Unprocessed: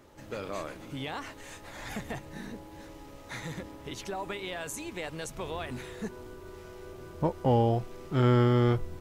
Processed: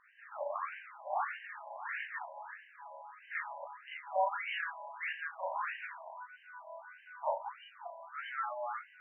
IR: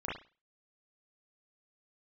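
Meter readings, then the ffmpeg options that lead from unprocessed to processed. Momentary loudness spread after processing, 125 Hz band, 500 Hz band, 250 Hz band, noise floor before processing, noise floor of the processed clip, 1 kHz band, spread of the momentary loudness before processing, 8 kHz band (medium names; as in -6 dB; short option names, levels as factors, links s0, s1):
14 LU, under -40 dB, -10.0 dB, under -40 dB, -49 dBFS, -60 dBFS, -0.5 dB, 21 LU, under -35 dB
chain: -filter_complex "[0:a]acompressor=threshold=0.0355:ratio=2.5[s0];[1:a]atrim=start_sample=2205[s1];[s0][s1]afir=irnorm=-1:irlink=0,afftfilt=real='re*between(b*sr/1024,730*pow(2200/730,0.5+0.5*sin(2*PI*1.6*pts/sr))/1.41,730*pow(2200/730,0.5+0.5*sin(2*PI*1.6*pts/sr))*1.41)':imag='im*between(b*sr/1024,730*pow(2200/730,0.5+0.5*sin(2*PI*1.6*pts/sr))/1.41,730*pow(2200/730,0.5+0.5*sin(2*PI*1.6*pts/sr))*1.41)':win_size=1024:overlap=0.75,volume=1.26"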